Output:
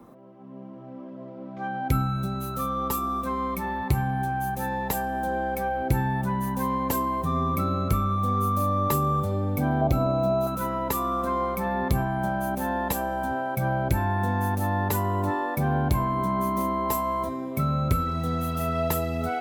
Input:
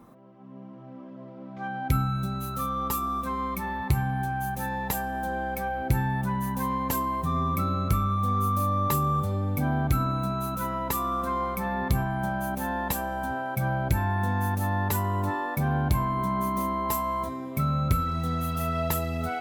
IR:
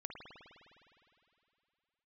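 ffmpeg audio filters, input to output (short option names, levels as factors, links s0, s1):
-filter_complex "[0:a]asettb=1/sr,asplit=3[s0][s1][s2];[s0]atrim=end=9.814[s3];[s1]atrim=start=9.81:end=10.47,asetpts=PTS-STARTPTS,afade=t=in:d=0.004:c=qsin,afade=t=out:st=0.656:d=0.004:c=qsin,equalizer=f=630:t=o:w=0.67:g=11,equalizer=f=1600:t=o:w=0.67:g=-9,equalizer=f=10000:t=o:w=0.67:g=-10[s4];[s2]atrim=start=10.466[s5];[s3][s4]acrossfade=d=0.004:c1=hsin:c2=qsin[s6];[s6][s5]acrossfade=d=0.004:c1=qsin:c2=hsin,acrossover=split=300|650|3200[s7][s8][s9][s10];[s8]acontrast=73[s11];[s7][s11][s9][s10]amix=inputs=4:normalize=0"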